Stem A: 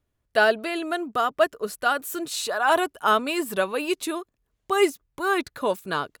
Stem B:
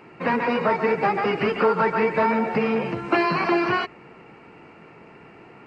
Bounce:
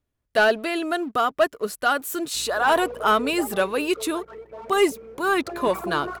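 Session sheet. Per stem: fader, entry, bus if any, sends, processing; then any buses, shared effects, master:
-1.5 dB, 0.00 s, no send, bell 270 Hz +3 dB 0.28 oct
3.34 s -15 dB -> 3.89 s -22 dB -> 5.37 s -22 dB -> 5.65 s -14 dB, 2.35 s, no send, formant sharpening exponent 3; hum 60 Hz, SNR 15 dB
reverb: off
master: sample leveller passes 1

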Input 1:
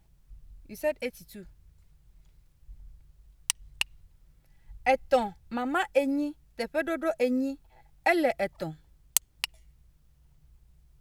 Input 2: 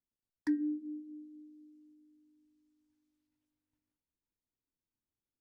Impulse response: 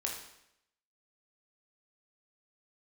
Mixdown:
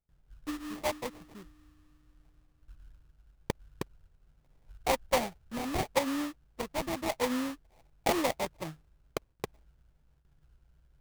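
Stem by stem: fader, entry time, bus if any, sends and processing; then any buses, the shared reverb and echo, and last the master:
-4.5 dB, 0.00 s, no send, dry
-6.5 dB, 0.00 s, send -3.5 dB, auto duck -7 dB, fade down 0.75 s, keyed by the first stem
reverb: on, RT60 0.80 s, pre-delay 16 ms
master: gate with hold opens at -58 dBFS; sample-rate reducer 1500 Hz, jitter 20%

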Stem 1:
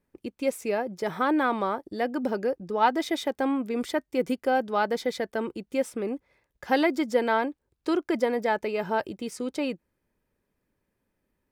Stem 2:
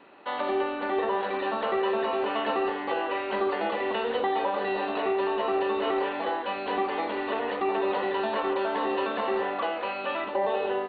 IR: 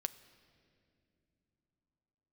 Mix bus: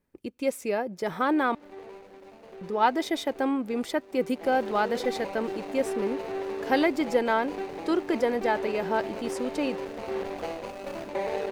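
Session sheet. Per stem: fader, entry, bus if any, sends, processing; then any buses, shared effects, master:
-1.0 dB, 0.00 s, muted 1.55–2.61, send -23 dB, dry
4.32 s -16 dB -> 4.53 s -4 dB, 0.80 s, send -3.5 dB, median filter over 41 samples; auto duck -8 dB, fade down 0.75 s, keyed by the first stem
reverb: on, pre-delay 6 ms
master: dry

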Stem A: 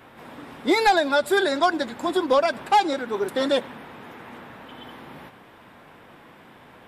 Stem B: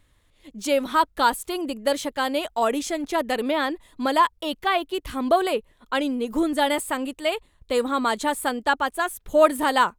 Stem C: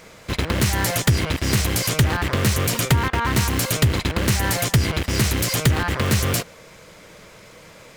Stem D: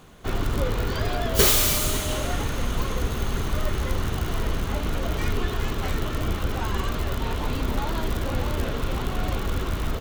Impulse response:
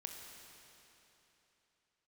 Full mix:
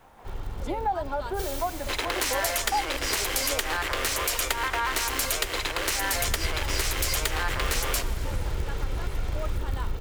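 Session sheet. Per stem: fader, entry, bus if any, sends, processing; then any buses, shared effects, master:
-12.5 dB, 0.00 s, no send, treble ducked by the level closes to 1100 Hz; bell 820 Hz +11 dB 1 oct; bit-crush 9-bit
-18.0 dB, 0.00 s, no send, dry
-0.5 dB, 1.60 s, send -5 dB, Bessel high-pass 570 Hz, order 8
5.98 s -15 dB -> 6.33 s -5 dB, 0.00 s, no send, minimum comb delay 2.2 ms; low shelf 140 Hz +9.5 dB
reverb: on, RT60 3.4 s, pre-delay 21 ms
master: compressor 2:1, threshold -27 dBFS, peak gain reduction 7 dB

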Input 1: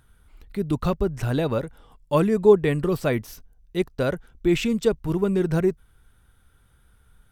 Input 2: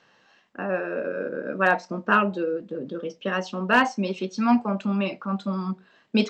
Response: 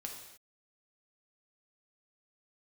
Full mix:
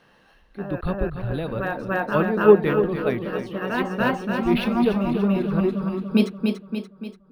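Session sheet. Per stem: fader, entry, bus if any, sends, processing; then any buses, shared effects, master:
-3.5 dB, 0.00 s, no send, echo send -9.5 dB, elliptic low-pass 4400 Hz; three-band expander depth 70%
+1.5 dB, 0.00 s, muted 0.81–1.46, no send, echo send -8 dB, low shelf 470 Hz +6.5 dB; auto duck -11 dB, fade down 0.25 s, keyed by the first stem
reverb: off
echo: feedback echo 0.289 s, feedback 51%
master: decimation joined by straight lines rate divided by 3×

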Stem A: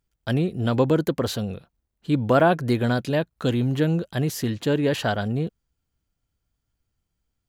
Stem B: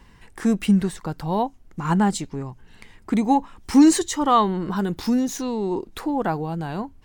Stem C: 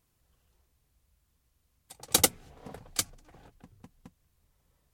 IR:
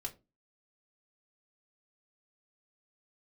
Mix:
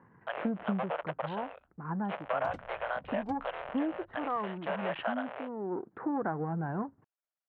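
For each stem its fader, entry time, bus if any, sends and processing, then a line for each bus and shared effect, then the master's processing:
-6.5 dB, 0.00 s, no send, cycle switcher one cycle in 3, muted; sample leveller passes 1; elliptic band-pass 590–3100 Hz, stop band 40 dB
-0.5 dB, 0.00 s, no send, half-wave gain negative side -7 dB; Chebyshev band-pass 120–1600 Hz, order 3; auto duck -10 dB, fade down 1.35 s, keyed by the first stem
-13.5 dB, 0.30 s, no send, tilt -3 dB/oct; notch comb 420 Hz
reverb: off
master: LPF 2300 Hz 12 dB/oct; compressor 6:1, threshold -28 dBFS, peak gain reduction 8 dB

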